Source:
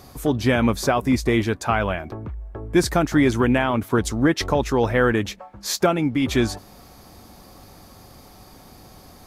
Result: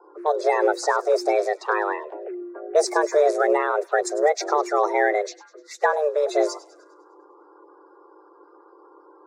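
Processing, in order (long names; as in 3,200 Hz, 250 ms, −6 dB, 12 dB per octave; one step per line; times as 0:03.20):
spectral magnitudes quantised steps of 30 dB
low-pass that shuts in the quiet parts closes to 610 Hz, open at −18 dBFS
phaser swept by the level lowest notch 310 Hz, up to 2,700 Hz, full sweep at −21 dBFS
frequency shifter +300 Hz
on a send: delay with a high-pass on its return 101 ms, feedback 51%, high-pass 3,100 Hz, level −17 dB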